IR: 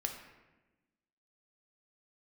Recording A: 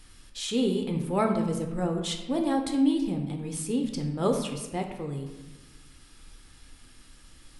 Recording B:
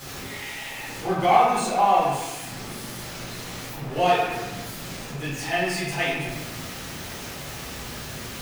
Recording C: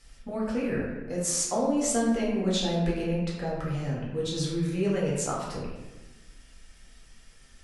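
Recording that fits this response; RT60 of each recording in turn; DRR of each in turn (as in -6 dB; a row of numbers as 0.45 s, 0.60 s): A; 1.1 s, 1.1 s, 1.1 s; 2.5 dB, -10.0 dB, -6.0 dB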